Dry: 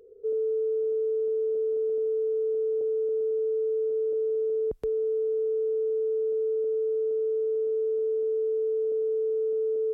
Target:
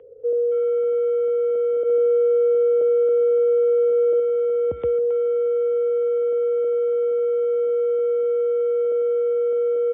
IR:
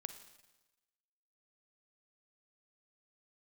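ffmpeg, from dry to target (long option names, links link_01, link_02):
-filter_complex "[0:a]asplit=2[link_01][link_02];[link_02]adelay=270,highpass=300,lowpass=3400,asoftclip=type=hard:threshold=-30.5dB,volume=-9dB[link_03];[link_01][link_03]amix=inputs=2:normalize=0,asettb=1/sr,asplit=3[link_04][link_05][link_06];[link_04]atrim=end=1.834[link_07];[link_05]atrim=start=1.83:end=4.2,asetpts=PTS-STARTPTS,afade=type=in:duration=0.004:curve=qsin,afade=type=out:start_time=2.366:duration=0.004:curve=qsin,adynamicequalizer=threshold=0.00891:dfrequency=330:dqfactor=0.9:tfrequency=330:tqfactor=0.9:attack=5:release=100:ratio=0.375:range=2:mode=boostabove:tftype=bell[link_08];[link_06]atrim=start=4.196[link_09];[link_07][link_08]acrossfade=duration=0.004:curve1=hsin:curve2=qsin[link_10];[link_10][link_09]acrossfade=duration=0.004:curve1=qsin:curve2=hsin,afreqshift=37,volume=7dB" -ar 8000 -c:a libmp3lame -b:a 16k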